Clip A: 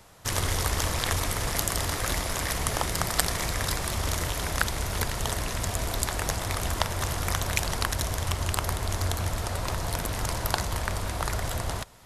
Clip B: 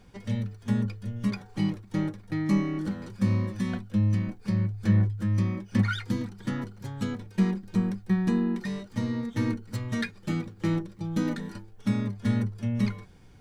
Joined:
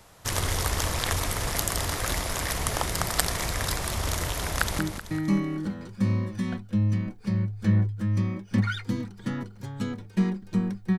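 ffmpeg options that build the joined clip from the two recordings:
-filter_complex "[0:a]apad=whole_dur=10.98,atrim=end=10.98,atrim=end=4.792[s0];[1:a]atrim=start=1.998:end=8.19[s1];[s0][s1]acrossfade=d=0.004:c1=hsin:c2=hsin,asplit=2[s2][s3];[s3]afade=t=in:st=4.49:d=0.01,afade=t=out:st=4.79:d=0.01,aecho=0:1:190|380|570|760|950:0.421697|0.189763|0.0853935|0.0384271|0.0172922[s4];[s2][s4]amix=inputs=2:normalize=0"

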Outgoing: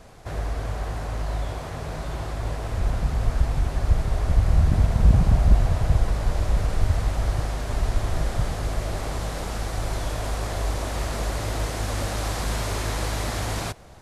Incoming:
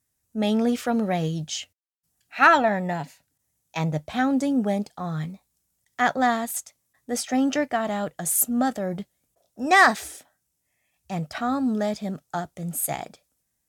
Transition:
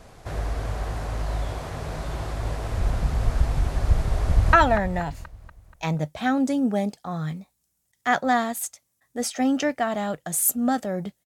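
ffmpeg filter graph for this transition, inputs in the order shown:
-filter_complex "[0:a]apad=whole_dur=11.25,atrim=end=11.25,atrim=end=4.532[s0];[1:a]atrim=start=2.458:end=9.18[s1];[s0][s1]acrossfade=d=0.004:c1=hsin:c2=hsin,asplit=2[s2][s3];[s3]afade=t=in:st=4.22:d=0.01,afade=t=out:st=4.53:d=0.01,aecho=0:1:240|480|720|960|1200|1440:0.421697|0.210848|0.105424|0.0527121|0.026356|0.013178[s4];[s2][s4]amix=inputs=2:normalize=0"

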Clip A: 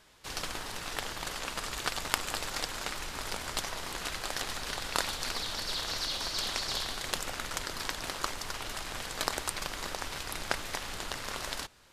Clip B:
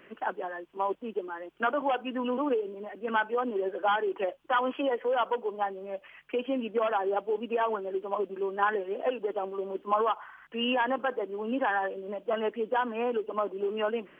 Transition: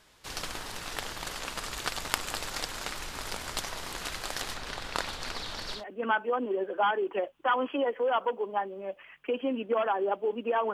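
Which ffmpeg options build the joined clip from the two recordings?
-filter_complex "[0:a]asettb=1/sr,asplit=3[s0][s1][s2];[s0]atrim=end=4.544[s3];[s1]atrim=start=4.54:end=5.84,asetpts=PTS-STARTPTS,afade=t=in:d=0.004:c=qsin,afade=t=out:st=1.296:d=0.004:c=qsin,lowpass=f=3800:p=1[s4];[s2]atrim=start=5.836[s5];[s3][s4]acrossfade=d=0.004:c1=hsin:c2=qsin[s6];[s6][s5]acrossfade=d=0.004:c1=qsin:c2=hsin,apad=whole_dur=10.73,atrim=end=10.73,atrim=end=5.84,asetpts=PTS-STARTPTS[s7];[1:a]atrim=start=2.77:end=7.78,asetpts=PTS-STARTPTS[s8];[s7][s8]acrossfade=d=0.12:c1=tri:c2=tri"

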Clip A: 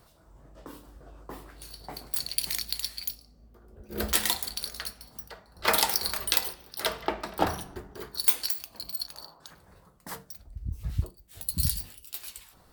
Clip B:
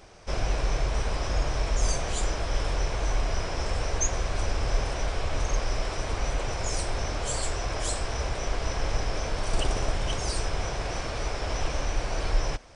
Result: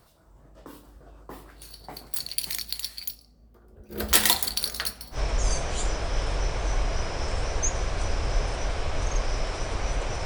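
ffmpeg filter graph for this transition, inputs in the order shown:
-filter_complex "[0:a]asplit=3[s0][s1][s2];[s0]afade=t=out:st=4.1:d=0.02[s3];[s1]acontrast=74,afade=t=in:st=4.1:d=0.02,afade=t=out:st=5.19:d=0.02[s4];[s2]afade=t=in:st=5.19:d=0.02[s5];[s3][s4][s5]amix=inputs=3:normalize=0,apad=whole_dur=10.25,atrim=end=10.25,atrim=end=5.19,asetpts=PTS-STARTPTS[s6];[1:a]atrim=start=1.49:end=6.63,asetpts=PTS-STARTPTS[s7];[s6][s7]acrossfade=d=0.08:c1=tri:c2=tri"

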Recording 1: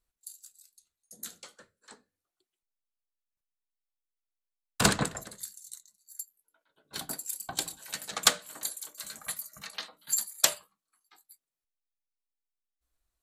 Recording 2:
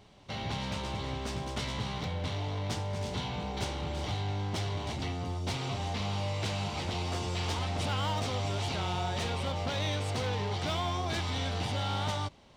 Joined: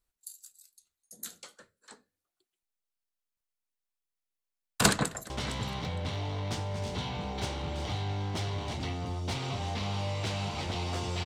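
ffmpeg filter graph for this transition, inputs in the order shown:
-filter_complex "[0:a]apad=whole_dur=11.25,atrim=end=11.25,atrim=end=5.302[s0];[1:a]atrim=start=1.488:end=7.44[s1];[s0][s1]acrossfade=d=0.004:c1=hsin:c2=hsin,asplit=2[s2][s3];[s3]afade=t=in:st=4.95:d=0.01,afade=t=out:st=5.3:d=0.01,aecho=0:1:460|920:0.281838|0.0422757[s4];[s2][s4]amix=inputs=2:normalize=0"

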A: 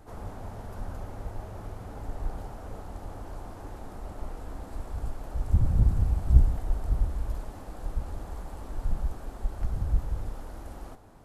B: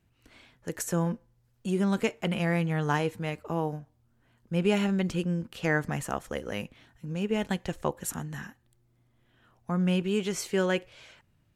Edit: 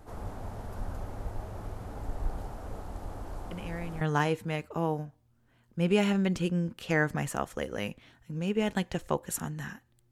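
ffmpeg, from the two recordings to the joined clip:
-filter_complex "[1:a]asplit=2[s0][s1];[0:a]apad=whole_dur=10.11,atrim=end=10.11,atrim=end=4.012[s2];[s1]atrim=start=2.748:end=8.85[s3];[s0]atrim=start=2.25:end=2.75,asetpts=PTS-STARTPTS,volume=0.266,afade=t=in:d=0.004:c=hsin,afade=t=out:st=0.496:d=0.004:c=hsin,adelay=3510[s4];[s2][s3]acrossfade=d=0.004:c1=hsin:c2=hsin[s5];[s5][s4]amix=inputs=2:normalize=0"

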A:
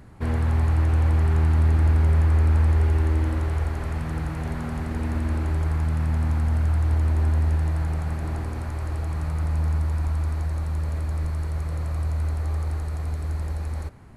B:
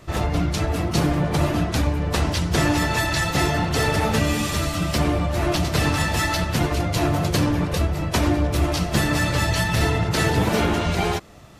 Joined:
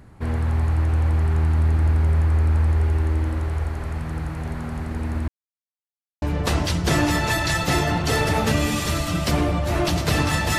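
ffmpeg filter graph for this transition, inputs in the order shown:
-filter_complex "[0:a]apad=whole_dur=10.58,atrim=end=10.58,asplit=2[s0][s1];[s0]atrim=end=5.28,asetpts=PTS-STARTPTS,afade=t=out:st=5.276:d=0.004:c=hsin[s2];[s1]atrim=start=5.28:end=6.22,asetpts=PTS-STARTPTS,volume=0[s3];[1:a]atrim=start=1.89:end=6.25,asetpts=PTS-STARTPTS,afade=t=in:d=0.004:c=hsin[s4];[s2][s3][s4]concat=n=3:v=0:a=1"

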